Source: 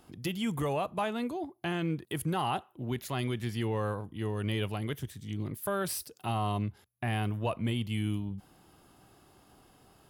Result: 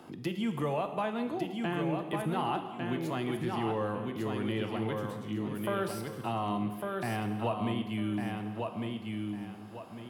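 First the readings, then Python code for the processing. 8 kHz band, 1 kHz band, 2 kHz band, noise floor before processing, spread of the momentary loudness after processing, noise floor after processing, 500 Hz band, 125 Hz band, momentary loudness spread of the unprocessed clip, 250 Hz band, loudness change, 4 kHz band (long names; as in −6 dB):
−8.5 dB, +1.0 dB, 0.0 dB, −62 dBFS, 5 LU, −45 dBFS, +1.5 dB, −3.5 dB, 6 LU, +2.0 dB, 0.0 dB, −2.5 dB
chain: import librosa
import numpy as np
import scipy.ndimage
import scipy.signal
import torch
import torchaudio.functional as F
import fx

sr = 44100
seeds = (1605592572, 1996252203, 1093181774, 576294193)

y = scipy.signal.sosfilt(scipy.signal.butter(2, 160.0, 'highpass', fs=sr, output='sos'), x)
y = fx.high_shelf(y, sr, hz=3900.0, db=-12.0)
y = fx.echo_feedback(y, sr, ms=1152, feedback_pct=22, wet_db=-5.0)
y = fx.rev_gated(y, sr, seeds[0], gate_ms=390, shape='falling', drr_db=7.5)
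y = fx.band_squash(y, sr, depth_pct=40)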